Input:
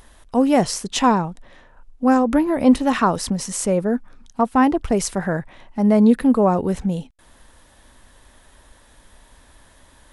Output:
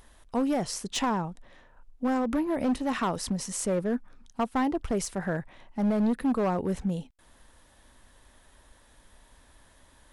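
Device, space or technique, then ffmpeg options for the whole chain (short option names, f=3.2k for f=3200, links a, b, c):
limiter into clipper: -af "alimiter=limit=-9dB:level=0:latency=1:release=228,asoftclip=type=hard:threshold=-14.5dB,volume=-7dB"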